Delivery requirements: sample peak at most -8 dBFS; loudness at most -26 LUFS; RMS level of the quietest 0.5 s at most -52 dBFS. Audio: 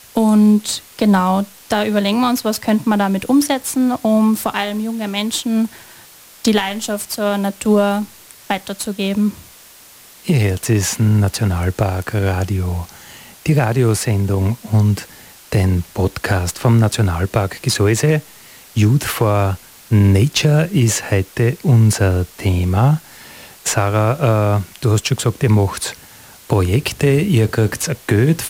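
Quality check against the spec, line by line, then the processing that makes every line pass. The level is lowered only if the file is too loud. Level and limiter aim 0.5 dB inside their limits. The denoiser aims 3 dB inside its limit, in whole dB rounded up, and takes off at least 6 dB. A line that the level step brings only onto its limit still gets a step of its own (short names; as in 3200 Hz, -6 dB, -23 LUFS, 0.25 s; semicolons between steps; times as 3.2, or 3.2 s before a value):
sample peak -4.0 dBFS: fail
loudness -17.0 LUFS: fail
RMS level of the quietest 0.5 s -43 dBFS: fail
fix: gain -9.5 dB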